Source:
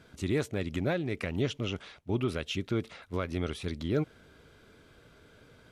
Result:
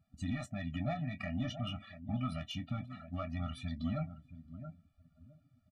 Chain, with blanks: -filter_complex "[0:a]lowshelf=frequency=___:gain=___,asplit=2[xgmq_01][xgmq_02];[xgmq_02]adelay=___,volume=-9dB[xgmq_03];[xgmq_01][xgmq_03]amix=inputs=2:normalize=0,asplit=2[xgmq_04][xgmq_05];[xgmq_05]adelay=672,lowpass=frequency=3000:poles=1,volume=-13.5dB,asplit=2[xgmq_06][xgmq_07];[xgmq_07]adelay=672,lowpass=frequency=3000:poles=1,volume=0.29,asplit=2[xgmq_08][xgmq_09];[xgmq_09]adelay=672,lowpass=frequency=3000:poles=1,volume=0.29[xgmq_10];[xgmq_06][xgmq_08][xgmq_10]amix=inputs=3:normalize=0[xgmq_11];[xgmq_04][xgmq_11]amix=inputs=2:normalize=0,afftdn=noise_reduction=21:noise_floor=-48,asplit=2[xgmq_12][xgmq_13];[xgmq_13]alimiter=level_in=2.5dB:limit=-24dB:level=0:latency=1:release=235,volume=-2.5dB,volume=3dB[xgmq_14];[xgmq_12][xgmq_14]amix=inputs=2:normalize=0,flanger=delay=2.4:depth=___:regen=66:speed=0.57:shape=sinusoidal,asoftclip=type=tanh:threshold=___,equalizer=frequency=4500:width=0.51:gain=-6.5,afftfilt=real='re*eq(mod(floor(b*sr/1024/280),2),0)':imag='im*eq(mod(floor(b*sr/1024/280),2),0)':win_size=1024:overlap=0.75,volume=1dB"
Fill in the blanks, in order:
420, -6, 24, 4.7, -21.5dB